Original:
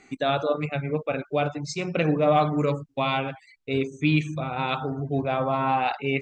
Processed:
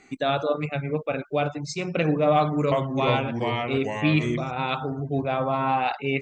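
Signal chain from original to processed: 2.36–4.51 s: ever faster or slower copies 355 ms, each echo -2 st, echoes 2

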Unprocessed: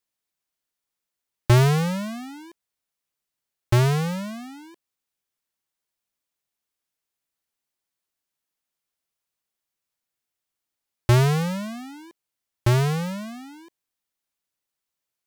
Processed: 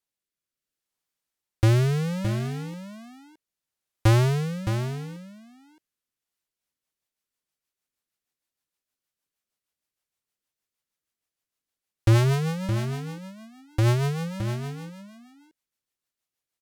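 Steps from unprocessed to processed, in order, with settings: rotary cabinet horn 0.75 Hz, later 7 Hz, at 5.52 s; delay 566 ms -8.5 dB; speed mistake 48 kHz file played as 44.1 kHz

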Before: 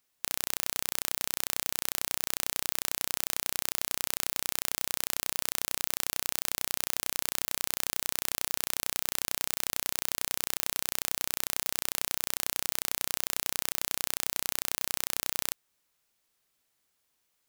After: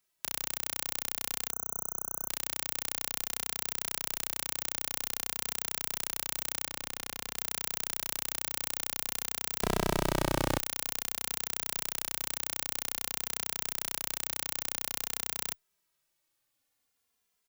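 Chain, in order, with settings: 1.50–2.28 s: spectral selection erased 1.5–6 kHz; 6.65–7.36 s: treble shelf 5.1 kHz -7 dB; 9.62–10.60 s: overdrive pedal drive 36 dB, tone 5.2 kHz, clips at -2 dBFS; endless flanger 2.6 ms -0.51 Hz

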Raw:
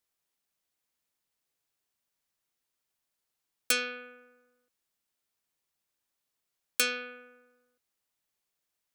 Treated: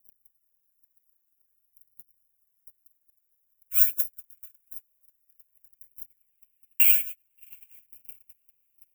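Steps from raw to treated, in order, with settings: added noise pink -53 dBFS; phaser 0.5 Hz, delay 3.6 ms, feedback 76%; overload inside the chain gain 20 dB; compression 2.5:1, threshold -43 dBFS, peak gain reduction 13.5 dB; on a send: thinning echo 893 ms, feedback 48%, high-pass 720 Hz, level -12 dB; on the sum: low-pass sweep 1.5 kHz -> 5.5 kHz, 5.13–8.62 s; echo that smears into a reverb 682 ms, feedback 47%, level -9 dB; gate -40 dBFS, range -43 dB; careless resampling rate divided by 8×, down none, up zero stuff; FFT filter 190 Hz 0 dB, 390 Hz -4 dB, 580 Hz -2 dB, 1.3 kHz -10 dB, 2.7 kHz +8 dB, 4.4 kHz -29 dB, 6.5 kHz -5 dB, 16 kHz +15 dB; trim -1 dB

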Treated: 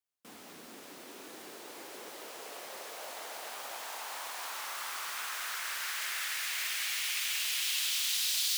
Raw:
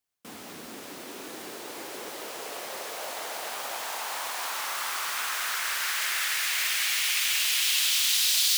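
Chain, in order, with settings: bass shelf 78 Hz -12 dB; trim -7.5 dB

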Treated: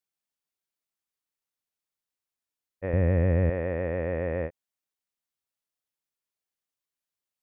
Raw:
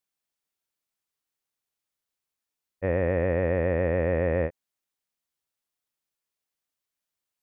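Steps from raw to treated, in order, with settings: 2.93–3.50 s: tone controls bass +12 dB, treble +4 dB; trim -4.5 dB

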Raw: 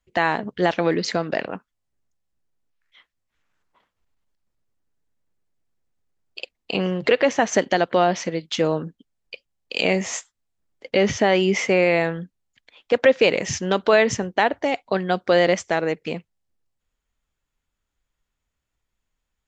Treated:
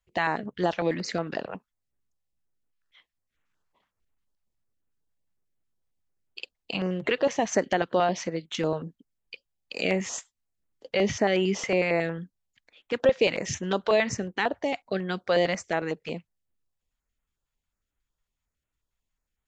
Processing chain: step-sequenced notch 11 Hz 280–4900 Hz; trim -4.5 dB

